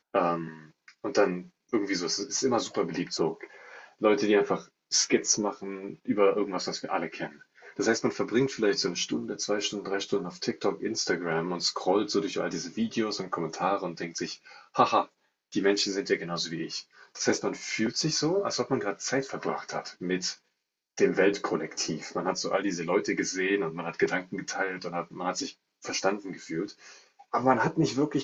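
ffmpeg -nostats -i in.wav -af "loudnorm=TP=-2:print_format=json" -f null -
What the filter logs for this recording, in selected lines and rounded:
"input_i" : "-28.9",
"input_tp" : "-8.1",
"input_lra" : "2.5",
"input_thresh" : "-39.3",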